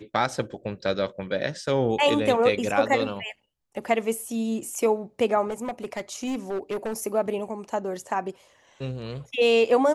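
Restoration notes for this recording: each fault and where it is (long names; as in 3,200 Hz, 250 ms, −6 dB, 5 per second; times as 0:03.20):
0:05.47–0:07.04: clipping −25 dBFS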